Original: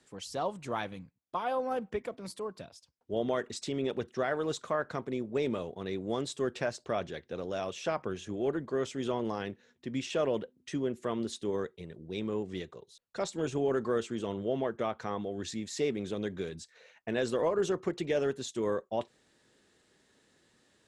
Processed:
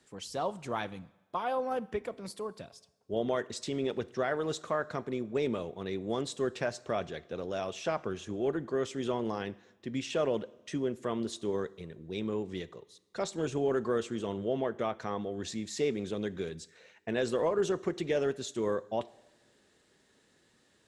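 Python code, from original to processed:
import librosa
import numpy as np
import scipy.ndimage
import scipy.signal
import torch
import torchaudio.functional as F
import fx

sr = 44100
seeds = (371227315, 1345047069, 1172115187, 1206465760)

y = fx.rev_double_slope(x, sr, seeds[0], early_s=0.86, late_s=2.5, knee_db=-18, drr_db=18.0)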